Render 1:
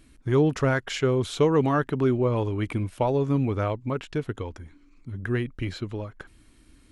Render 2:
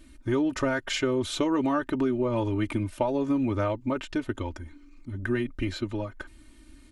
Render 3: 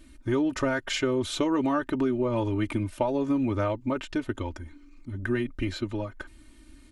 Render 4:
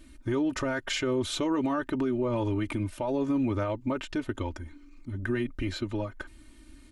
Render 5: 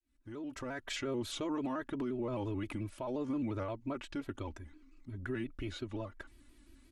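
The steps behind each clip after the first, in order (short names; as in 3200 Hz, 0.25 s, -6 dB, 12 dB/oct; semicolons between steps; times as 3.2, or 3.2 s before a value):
comb 3.3 ms, depth 82%; compressor, threshold -22 dBFS, peak gain reduction 7 dB
nothing audible
limiter -20.5 dBFS, peak gain reduction 8 dB
opening faded in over 0.92 s; shaped vibrato square 5.7 Hz, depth 100 cents; gain -8.5 dB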